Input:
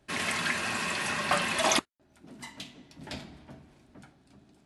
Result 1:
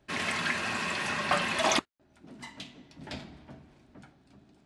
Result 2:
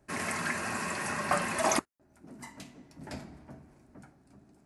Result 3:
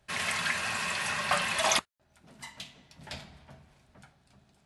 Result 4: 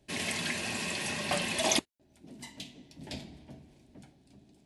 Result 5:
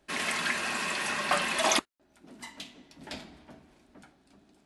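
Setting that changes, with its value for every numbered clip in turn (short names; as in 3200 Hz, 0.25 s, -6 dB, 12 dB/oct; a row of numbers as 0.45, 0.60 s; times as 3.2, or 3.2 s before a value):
bell, frequency: 14000, 3400, 300, 1300, 110 Hz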